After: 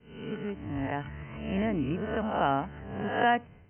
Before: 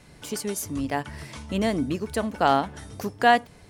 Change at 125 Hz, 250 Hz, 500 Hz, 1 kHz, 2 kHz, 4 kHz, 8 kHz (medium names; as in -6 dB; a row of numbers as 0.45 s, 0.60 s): -1.0 dB, -3.5 dB, -5.0 dB, -6.0 dB, -5.5 dB, -9.0 dB, under -40 dB